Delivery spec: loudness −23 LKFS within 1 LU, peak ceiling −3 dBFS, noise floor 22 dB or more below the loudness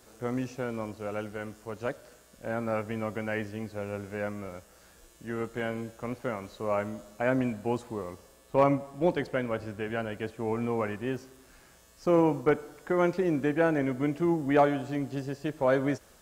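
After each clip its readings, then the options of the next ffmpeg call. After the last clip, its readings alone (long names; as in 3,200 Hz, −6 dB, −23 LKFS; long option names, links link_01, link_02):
integrated loudness −30.5 LKFS; sample peak −12.0 dBFS; target loudness −23.0 LKFS
→ -af "volume=7.5dB"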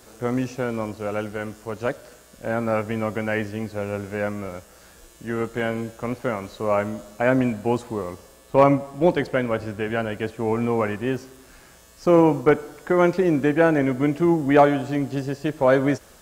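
integrated loudness −23.0 LKFS; sample peak −4.5 dBFS; background noise floor −50 dBFS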